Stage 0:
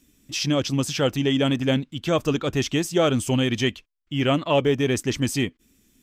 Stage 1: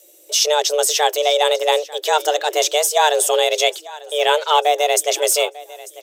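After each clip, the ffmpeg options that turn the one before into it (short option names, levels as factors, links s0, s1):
-af "crystalizer=i=2.5:c=0,afreqshift=300,aecho=1:1:895|1790|2685:0.106|0.0381|0.0137,volume=1.58"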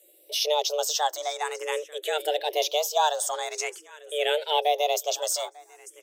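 -filter_complex "[0:a]asplit=2[s0][s1];[s1]afreqshift=0.47[s2];[s0][s2]amix=inputs=2:normalize=1,volume=0.473"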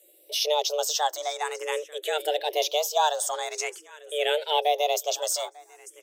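-af anull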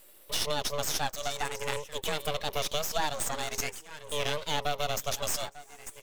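-af "lowshelf=f=360:g=-9,acompressor=threshold=0.0224:ratio=2.5,aeval=exprs='max(val(0),0)':c=same,volume=2.11"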